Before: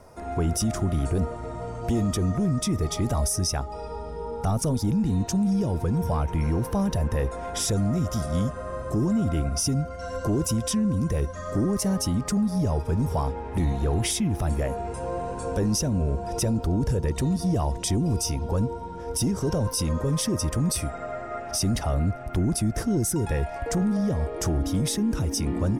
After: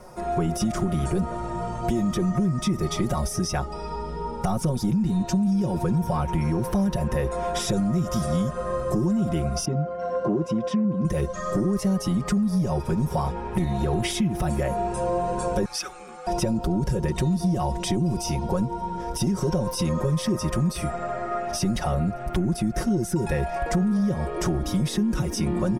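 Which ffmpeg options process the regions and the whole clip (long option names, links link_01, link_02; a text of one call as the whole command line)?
ffmpeg -i in.wav -filter_complex "[0:a]asettb=1/sr,asplit=3[link_01][link_02][link_03];[link_01]atrim=end=9.654[link_04];[link_02]atrim=start=9.65:end=11.05,asetpts=PTS-STARTPTS,afade=type=in:duration=0.004:curve=qsin,afade=type=out:start_time=1.396:duration=0.004:curve=qsin,highpass=170,lowpass=2900,adynamicequalizer=threshold=0.00398:dfrequency=1700:dqfactor=0.7:tfrequency=1700:tqfactor=0.7:attack=5:release=100:ratio=0.375:range=3:mode=cutabove:tftype=highshelf[link_05];[link_03]atrim=start=11.046[link_06];[link_04][link_05]acrossfade=duration=0.004:curve1=hsin:curve2=qsin[link_07];[link_07][link_06]acrossfade=duration=0.004:curve1=qsin:curve2=hsin,asettb=1/sr,asplit=3[link_08][link_09][link_10];[link_08]atrim=end=15.654[link_11];[link_09]atrim=start=15.65:end=16.27,asetpts=PTS-STARTPTS,afade=type=in:duration=0.004:curve=qsin,afade=type=out:start_time=0.616:duration=0.004:curve=qsin,highpass=frequency=1500:width_type=q:width=2.3,afreqshift=-190[link_12];[link_10]atrim=start=16.266[link_13];[link_11][link_12]acrossfade=duration=0.004:curve1=hsin:curve2=qsin[link_14];[link_14][link_13]acrossfade=duration=0.004:curve1=qsin:curve2=hsin,acrossover=split=3800[link_15][link_16];[link_16]acompressor=threshold=-37dB:ratio=4:attack=1:release=60[link_17];[link_15][link_17]amix=inputs=2:normalize=0,aecho=1:1:5.5:0.89,acompressor=threshold=-23dB:ratio=6,volume=3dB" out.wav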